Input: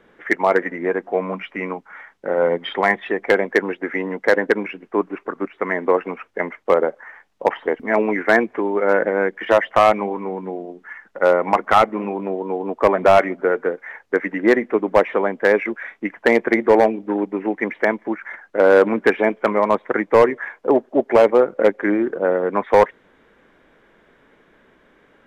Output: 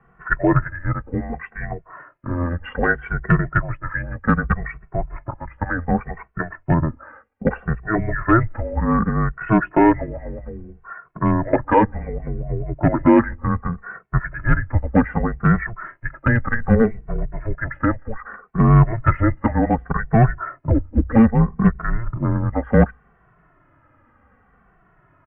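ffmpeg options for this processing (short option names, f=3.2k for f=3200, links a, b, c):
-filter_complex "[0:a]bandreject=f=50:t=h:w=6,bandreject=f=100:t=h:w=6,bandreject=f=150:t=h:w=6,bandreject=f=200:t=h:w=6,bandreject=f=250:t=h:w=6,bandreject=f=300:t=h:w=6,bandreject=f=350:t=h:w=6,bandreject=f=400:t=h:w=6,highpass=f=250:t=q:w=0.5412,highpass=f=250:t=q:w=1.307,lowpass=f=2.5k:t=q:w=0.5176,lowpass=f=2.5k:t=q:w=0.7071,lowpass=f=2.5k:t=q:w=1.932,afreqshift=-340,asplit=2[a][b];[b]adelay=2.2,afreqshift=-0.65[c];[a][c]amix=inputs=2:normalize=1,volume=2.5dB"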